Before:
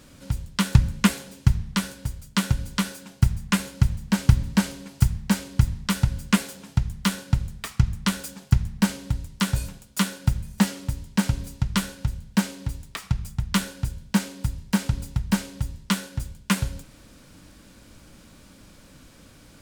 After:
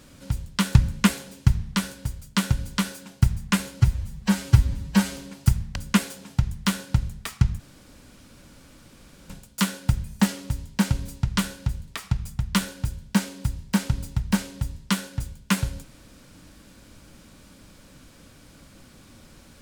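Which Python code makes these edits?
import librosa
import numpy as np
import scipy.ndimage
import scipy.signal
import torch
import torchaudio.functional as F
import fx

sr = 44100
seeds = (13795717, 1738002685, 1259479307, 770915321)

y = fx.edit(x, sr, fx.stretch_span(start_s=3.8, length_s=0.91, factor=1.5),
    fx.cut(start_s=5.3, length_s=0.84),
    fx.room_tone_fill(start_s=7.98, length_s=1.7),
    fx.cut(start_s=12.26, length_s=0.61), tone=tone)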